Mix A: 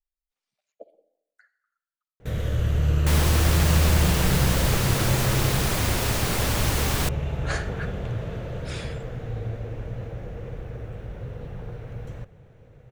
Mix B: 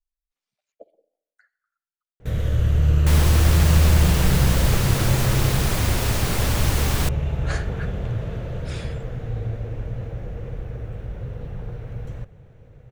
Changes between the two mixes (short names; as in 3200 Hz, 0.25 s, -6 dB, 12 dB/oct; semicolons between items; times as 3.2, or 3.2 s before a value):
speech: send -6.5 dB; master: add low shelf 130 Hz +6 dB